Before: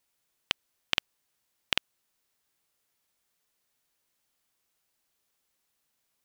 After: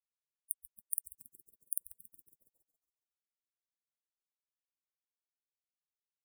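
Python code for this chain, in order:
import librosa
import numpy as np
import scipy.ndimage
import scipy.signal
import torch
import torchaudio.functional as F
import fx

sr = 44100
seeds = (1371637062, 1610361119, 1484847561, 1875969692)

y = fx.echo_thinned(x, sr, ms=139, feedback_pct=65, hz=630.0, wet_db=-17)
y = fx.spec_gate(y, sr, threshold_db=-30, keep='weak')
y = y * 10.0 ** (17.5 / 20.0)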